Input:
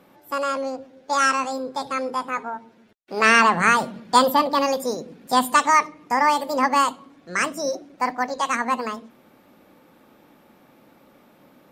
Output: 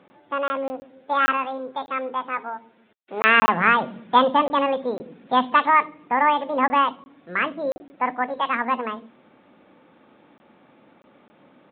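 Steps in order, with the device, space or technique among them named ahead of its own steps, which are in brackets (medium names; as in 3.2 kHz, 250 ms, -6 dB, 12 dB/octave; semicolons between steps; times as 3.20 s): call with lost packets (high-pass 110 Hz 6 dB/octave; resampled via 8 kHz; lost packets of 20 ms random); 1.37–3.38 s: bass shelf 350 Hz -6 dB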